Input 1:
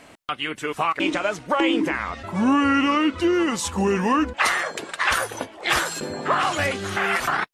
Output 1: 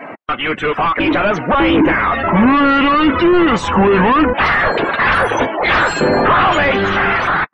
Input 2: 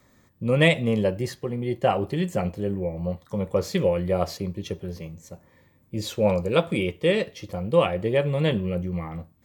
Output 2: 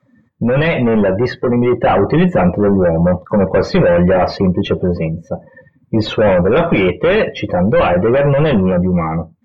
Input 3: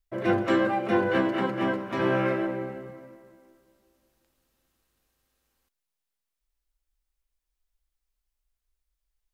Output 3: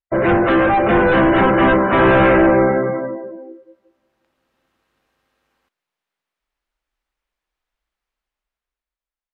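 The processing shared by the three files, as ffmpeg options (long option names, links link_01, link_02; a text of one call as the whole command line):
ffmpeg -i in.wav -filter_complex "[0:a]asplit=2[link_01][link_02];[link_02]highpass=frequency=720:poles=1,volume=33dB,asoftclip=type=tanh:threshold=-4.5dB[link_03];[link_01][link_03]amix=inputs=2:normalize=0,lowpass=frequency=1900:poles=1,volume=-6dB,bass=frequency=250:gain=6,treble=frequency=4000:gain=-6,afftdn=noise_reduction=26:noise_floor=-27,dynaudnorm=framelen=290:gausssize=9:maxgain=16dB,volume=-2.5dB" out.wav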